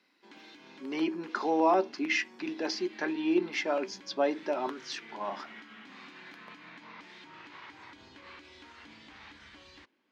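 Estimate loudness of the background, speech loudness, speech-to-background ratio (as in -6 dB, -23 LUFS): -50.5 LUFS, -31.0 LUFS, 19.5 dB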